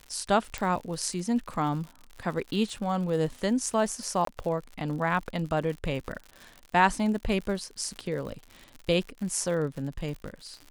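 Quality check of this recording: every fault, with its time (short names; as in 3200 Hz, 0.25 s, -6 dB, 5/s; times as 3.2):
crackle 88/s -36 dBFS
0.58 pop
4.25–4.27 gap 23 ms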